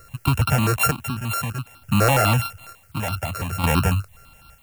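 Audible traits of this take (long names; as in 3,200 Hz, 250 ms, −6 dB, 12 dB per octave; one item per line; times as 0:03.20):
a buzz of ramps at a fixed pitch in blocks of 32 samples
chopped level 0.55 Hz, depth 60%, duty 50%
a quantiser's noise floor 10 bits, dither triangular
notches that jump at a steady rate 12 Hz 890–1,900 Hz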